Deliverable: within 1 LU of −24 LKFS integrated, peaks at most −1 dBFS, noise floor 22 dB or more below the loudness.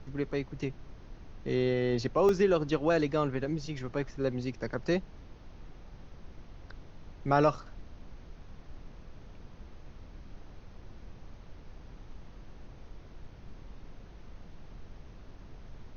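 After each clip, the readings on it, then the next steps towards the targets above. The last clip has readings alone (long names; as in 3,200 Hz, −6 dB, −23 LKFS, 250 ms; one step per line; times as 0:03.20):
number of dropouts 1; longest dropout 1.5 ms; background noise floor −51 dBFS; target noise floor −53 dBFS; integrated loudness −30.5 LKFS; sample peak −13.0 dBFS; target loudness −24.0 LKFS
→ repair the gap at 0:02.29, 1.5 ms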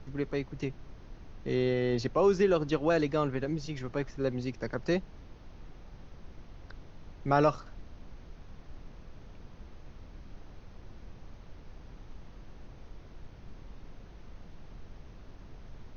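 number of dropouts 0; background noise floor −51 dBFS; target noise floor −53 dBFS
→ noise reduction from a noise print 6 dB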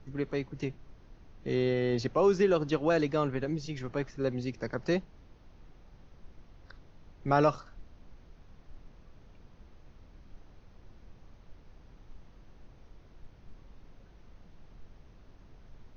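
background noise floor −57 dBFS; integrated loudness −30.5 LKFS; sample peak −13.0 dBFS; target loudness −24.0 LKFS
→ level +6.5 dB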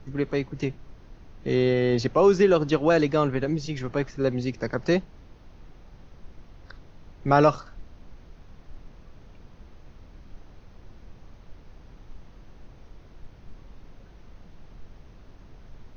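integrated loudness −24.0 LKFS; sample peak −6.5 dBFS; background noise floor −50 dBFS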